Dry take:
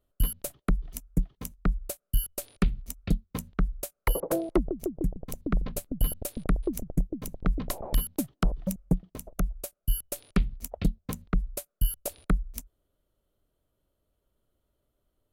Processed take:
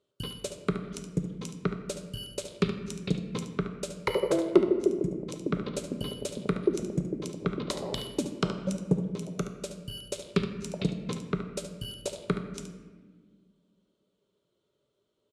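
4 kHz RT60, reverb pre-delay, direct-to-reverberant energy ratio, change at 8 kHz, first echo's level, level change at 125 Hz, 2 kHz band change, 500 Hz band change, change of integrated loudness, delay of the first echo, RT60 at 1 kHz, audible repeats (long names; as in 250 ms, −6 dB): 0.90 s, 5 ms, 4.5 dB, −3.5 dB, −10.0 dB, −2.0 dB, +1.5 dB, +6.5 dB, 0.0 dB, 72 ms, 1.3 s, 1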